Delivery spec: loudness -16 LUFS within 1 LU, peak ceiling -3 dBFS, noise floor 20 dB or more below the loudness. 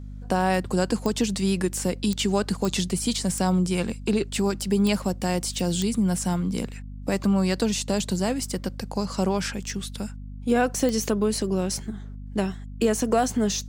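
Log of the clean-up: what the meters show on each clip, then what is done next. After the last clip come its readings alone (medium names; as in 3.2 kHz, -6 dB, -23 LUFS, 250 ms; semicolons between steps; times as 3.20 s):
clicks found 7; hum 50 Hz; highest harmonic 250 Hz; hum level -35 dBFS; loudness -25.5 LUFS; peak level -9.0 dBFS; loudness target -16.0 LUFS
-> de-click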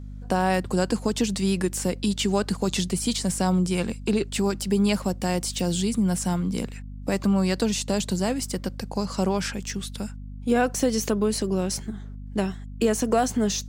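clicks found 0; hum 50 Hz; highest harmonic 250 Hz; hum level -35 dBFS
-> hum notches 50/100/150/200/250 Hz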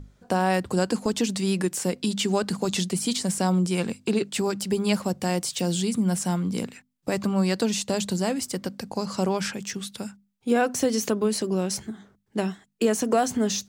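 hum not found; loudness -26.0 LUFS; peak level -9.5 dBFS; loudness target -16.0 LUFS
-> trim +10 dB; peak limiter -3 dBFS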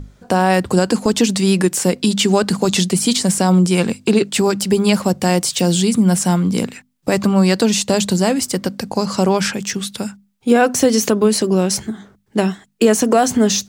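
loudness -16.5 LUFS; peak level -3.0 dBFS; noise floor -57 dBFS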